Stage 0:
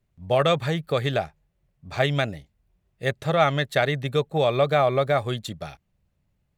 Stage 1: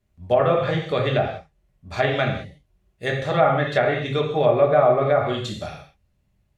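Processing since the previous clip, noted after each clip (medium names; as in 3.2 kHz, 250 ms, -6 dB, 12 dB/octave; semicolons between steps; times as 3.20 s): gated-style reverb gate 220 ms falling, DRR -1 dB; low-pass that closes with the level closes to 1.4 kHz, closed at -13.5 dBFS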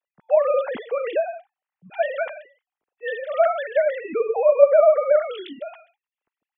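formants replaced by sine waves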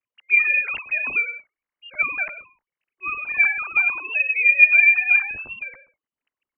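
bass shelf 210 Hz +10.5 dB; frequency inversion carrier 3 kHz; trim -1 dB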